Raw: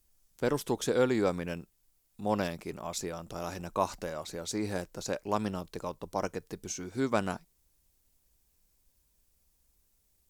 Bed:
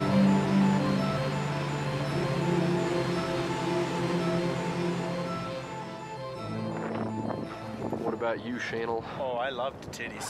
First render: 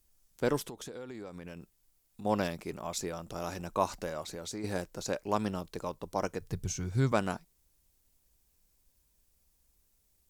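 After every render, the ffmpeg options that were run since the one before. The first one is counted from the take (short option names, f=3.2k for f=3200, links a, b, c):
-filter_complex "[0:a]asettb=1/sr,asplit=3[a][b][c];[a]atrim=end=0.644[d];[b]atrim=start=0.64:end=2.25,asetpts=PTS-STARTPTS,afade=t=in:d=0.004:c=qsin,afade=t=out:st=1.606:d=0.004:c=qsin,acompressor=threshold=-40dB:ratio=10:attack=3.2:release=140:knee=1:detection=peak[e];[c]atrim=start=2.246[f];[d][e]acrossfade=d=0.004:c1=hsin:c2=qsin[g];[g][f]acrossfade=d=0.004:c1=qsin:c2=hsin,asettb=1/sr,asplit=3[h][i][j];[h]atrim=end=4.224[k];[i]atrim=start=4.22:end=4.64,asetpts=PTS-STARTPTS,afade=t=in:d=0.004:c=qsin,afade=t=out:st=0.416:d=0.004:c=qsin,acompressor=threshold=-37dB:ratio=3:attack=3.2:release=140:knee=1:detection=peak[l];[j]atrim=start=4.636[m];[k][l]acrossfade=d=0.004:c1=hsin:c2=qsin[n];[n][m]acrossfade=d=0.004:c1=qsin:c2=hsin,asettb=1/sr,asplit=3[o][p][q];[o]atrim=end=6.414[r];[p]atrim=start=6.41:end=7.12,asetpts=PTS-STARTPTS,afade=t=in:d=0.004:c=qsin,afade=t=out:st=0.706:d=0.004:c=qsin,lowshelf=f=180:t=q:w=1.5:g=12[s];[q]atrim=start=7.116[t];[r][s]acrossfade=d=0.004:c1=hsin:c2=qsin[u];[u][t]acrossfade=d=0.004:c1=qsin:c2=hsin"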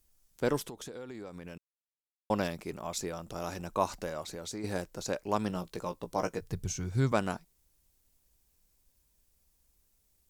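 -filter_complex "[0:a]asettb=1/sr,asplit=3[a][b][c];[a]atrim=end=5.484[d];[b]atrim=start=5.48:end=6.41,asetpts=PTS-STARTPTS,afade=t=in:d=0.004:c=qsin,afade=t=out:st=0.926:d=0.004:c=qsin,asplit=2[e][f];[f]adelay=17,volume=-7.5dB[g];[e][g]amix=inputs=2:normalize=0,atrim=end_sample=41013[h];[c]atrim=start=6.406[i];[d][h]acrossfade=d=0.004:c1=hsin:c2=qsin[j];[j][i]acrossfade=d=0.004:c1=qsin:c2=hsin,asplit=3[k][l][m];[k]atrim=end=1.58,asetpts=PTS-STARTPTS,afade=t=out:st=1.576:d=0.004:c=hsin[n];[l]atrim=start=1.58:end=2.3,asetpts=PTS-STARTPTS,volume=0[o];[m]atrim=start=2.3,asetpts=PTS-STARTPTS,afade=t=in:d=0.004:c=hsin[p];[n][o][p]concat=n=3:v=0:a=1"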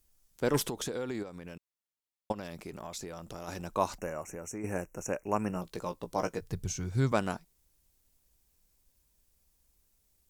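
-filter_complex "[0:a]asplit=3[a][b][c];[a]afade=t=out:st=0.53:d=0.02[d];[b]aeval=exprs='0.1*sin(PI/2*1.58*val(0)/0.1)':c=same,afade=t=in:st=0.53:d=0.02,afade=t=out:st=1.22:d=0.02[e];[c]afade=t=in:st=1.22:d=0.02[f];[d][e][f]amix=inputs=3:normalize=0,asplit=3[g][h][i];[g]afade=t=out:st=2.31:d=0.02[j];[h]acompressor=threshold=-37dB:ratio=5:attack=3.2:release=140:knee=1:detection=peak,afade=t=in:st=2.31:d=0.02,afade=t=out:st=3.47:d=0.02[k];[i]afade=t=in:st=3.47:d=0.02[l];[j][k][l]amix=inputs=3:normalize=0,asettb=1/sr,asplit=3[m][n][o];[m]atrim=end=3.984[p];[n]atrim=start=3.98:end=5.62,asetpts=PTS-STARTPTS,afade=t=in:d=0.004:c=qsin,afade=t=out:st=1.636:d=0.004:c=qsin,asuperstop=centerf=4000:order=20:qfactor=1.5[q];[o]atrim=start=5.616[r];[p][q]acrossfade=d=0.004:c1=hsin:c2=qsin[s];[s][r]acrossfade=d=0.004:c1=qsin:c2=hsin"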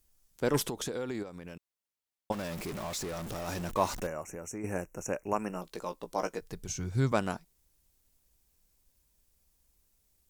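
-filter_complex "[0:a]asettb=1/sr,asplit=3[a][b][c];[a]atrim=end=2.324[d];[b]atrim=start=2.32:end=4.07,asetpts=PTS-STARTPTS,afade=t=in:d=0.004:c=qsin,afade=t=out:st=1.746:d=0.004:c=qsin,aeval=exprs='val(0)+0.5*0.015*sgn(val(0))':c=same[e];[c]atrim=start=4.066[f];[d][e]acrossfade=d=0.004:c1=hsin:c2=qsin[g];[g][f]acrossfade=d=0.004:c1=qsin:c2=hsin,asettb=1/sr,asplit=3[h][i][j];[h]atrim=end=5.334[k];[i]atrim=start=5.33:end=6.69,asetpts=PTS-STARTPTS,afade=t=in:d=0.004:c=qsin,afade=t=out:st=1.356:d=0.004:c=qsin,equalizer=f=92:t=o:w=1.5:g=-13.5[l];[j]atrim=start=6.686[m];[k][l]acrossfade=d=0.004:c1=hsin:c2=qsin[n];[n][m]acrossfade=d=0.004:c1=qsin:c2=hsin"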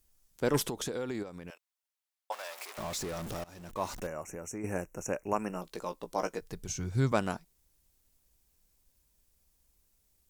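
-filter_complex "[0:a]asettb=1/sr,asplit=3[a][b][c];[a]atrim=end=1.504[d];[b]atrim=start=1.5:end=2.78,asetpts=PTS-STARTPTS,afade=t=in:d=0.004:c=qsin,afade=t=out:st=1.276:d=0.004:c=qsin,highpass=f=640:w=0.5412,highpass=f=640:w=1.3066[e];[c]atrim=start=2.776[f];[d][e]acrossfade=d=0.004:c1=hsin:c2=qsin[g];[g][f]acrossfade=d=0.004:c1=qsin:c2=hsin,asplit=2[h][i];[h]atrim=end=3.44,asetpts=PTS-STARTPTS,afade=t=out:st=3.436:d=0.004:c=hsin:silence=0.0749894[j];[i]atrim=start=3.44,asetpts=PTS-STARTPTS,afade=t=in:d=0.85:silence=0.0749894[k];[j][k]concat=n=2:v=0:a=1"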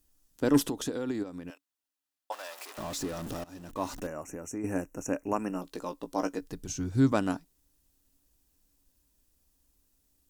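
-af "equalizer=f=280:t=o:w=0.24:g=14.5,bandreject=f=2.2k:w=11"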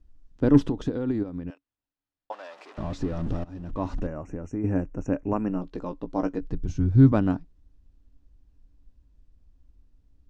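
-af "lowpass=5.8k,aemphasis=mode=reproduction:type=riaa"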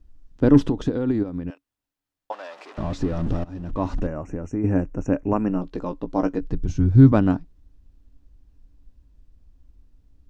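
-af "volume=4.5dB,alimiter=limit=-3dB:level=0:latency=1"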